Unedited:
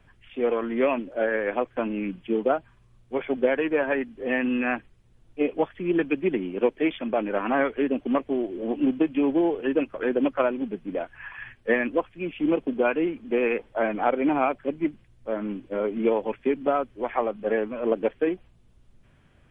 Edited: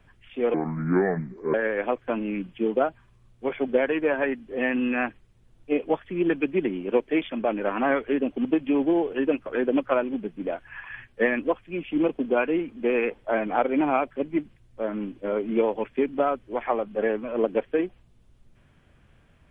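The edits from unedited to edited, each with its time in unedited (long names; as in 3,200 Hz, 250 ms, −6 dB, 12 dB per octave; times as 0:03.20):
0:00.54–0:01.23: play speed 69%
0:08.14–0:08.93: remove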